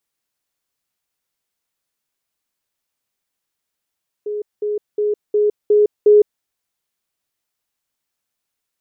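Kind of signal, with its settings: level ladder 418 Hz -21 dBFS, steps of 3 dB, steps 6, 0.16 s 0.20 s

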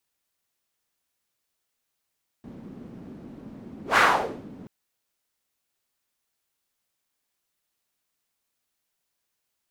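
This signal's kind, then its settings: whoosh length 2.23 s, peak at 1.53 s, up 0.13 s, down 0.54 s, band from 230 Hz, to 1.4 kHz, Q 2.4, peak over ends 25.5 dB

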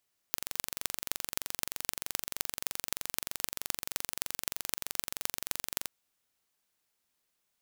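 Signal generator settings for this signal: pulse train 23.2 per s, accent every 6, -1.5 dBFS 5.56 s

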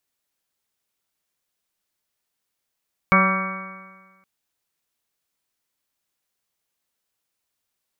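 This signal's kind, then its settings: stretched partials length 1.12 s, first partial 188 Hz, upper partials -13/-6/-12.5/-10/2/-4.5/-7/-17.5/-17.5/0.5 dB, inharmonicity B 0.0014, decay 1.43 s, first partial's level -17 dB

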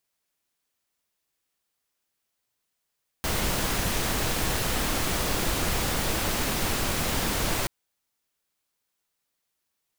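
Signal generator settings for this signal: noise pink, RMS -26.5 dBFS 4.43 s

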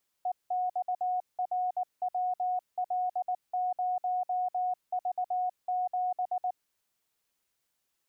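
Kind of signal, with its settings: Morse "EXRWL0V7" 19 wpm 730 Hz -27 dBFS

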